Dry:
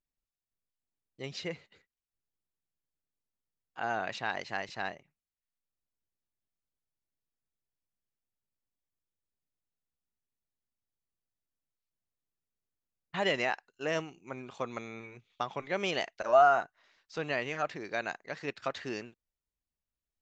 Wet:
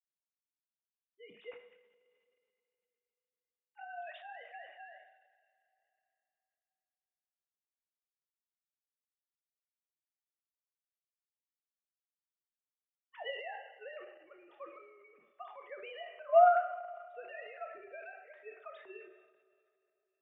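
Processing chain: sine-wave speech; two-slope reverb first 0.48 s, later 3.1 s, from -18 dB, DRR 4 dB; transient shaper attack +3 dB, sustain +8 dB; gain -8.5 dB

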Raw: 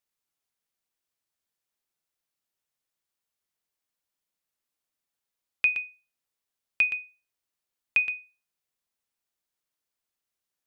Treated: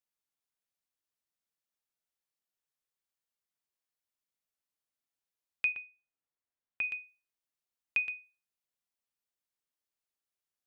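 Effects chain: 5.72–6.84 LPF 2200 Hz 12 dB/oct; gain -7 dB

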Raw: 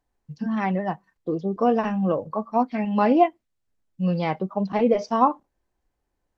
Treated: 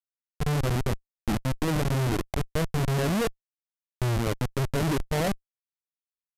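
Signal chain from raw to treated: Schmitt trigger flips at -23 dBFS; pitch shift -7 st

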